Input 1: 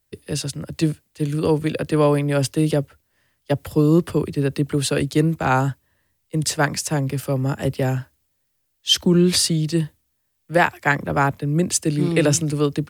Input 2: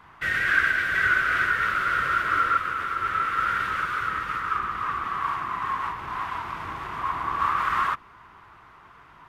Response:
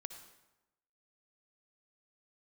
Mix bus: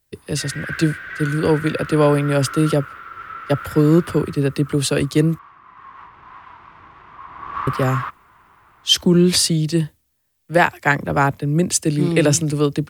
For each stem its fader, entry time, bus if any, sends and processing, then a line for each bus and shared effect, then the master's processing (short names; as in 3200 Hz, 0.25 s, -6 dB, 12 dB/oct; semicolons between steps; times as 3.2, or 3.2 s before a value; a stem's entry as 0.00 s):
+2.0 dB, 0.00 s, muted 5.39–7.67, no send, dry
4.15 s -8 dB -> 4.46 s -17.5 dB -> 5.59 s -17.5 dB -> 6.05 s -10.5 dB -> 7.25 s -10.5 dB -> 7.57 s -2 dB, 0.15 s, no send, Bessel low-pass 4100 Hz, order 2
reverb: off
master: dry